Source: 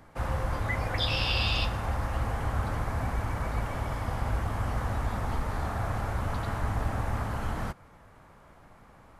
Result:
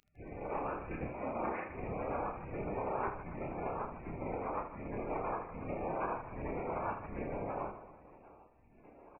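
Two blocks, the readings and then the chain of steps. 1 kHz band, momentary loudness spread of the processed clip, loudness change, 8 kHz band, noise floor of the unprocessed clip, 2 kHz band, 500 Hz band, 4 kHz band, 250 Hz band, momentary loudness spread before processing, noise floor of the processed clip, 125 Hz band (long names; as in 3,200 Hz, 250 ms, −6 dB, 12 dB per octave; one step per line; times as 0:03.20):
−4.5 dB, 7 LU, −8.5 dB, below −30 dB, −55 dBFS, −12.0 dB, −0.5 dB, below −40 dB, −4.0 dB, 6 LU, −62 dBFS, −16.5 dB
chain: auto-filter band-pass saw down 1.3 Hz 690–2,100 Hz
low-shelf EQ 74 Hz +8 dB
gate on every frequency bin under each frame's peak −25 dB weak
high-pass filter 48 Hz
tilt shelving filter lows −9.5 dB, about 700 Hz
voice inversion scrambler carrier 2,700 Hz
reverse bouncing-ball delay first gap 30 ms, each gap 1.6×, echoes 5
automatic gain control gain up to 8.5 dB
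level +11.5 dB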